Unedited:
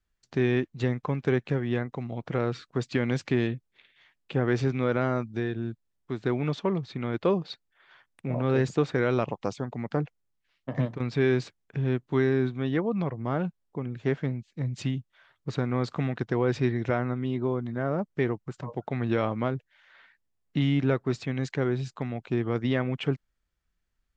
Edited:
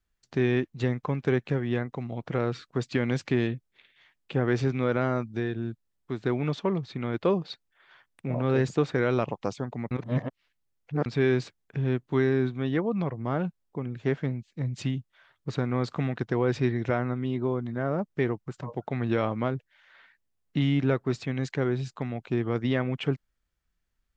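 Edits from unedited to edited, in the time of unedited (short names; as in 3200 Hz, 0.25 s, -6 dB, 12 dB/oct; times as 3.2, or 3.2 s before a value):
9.91–11.06 reverse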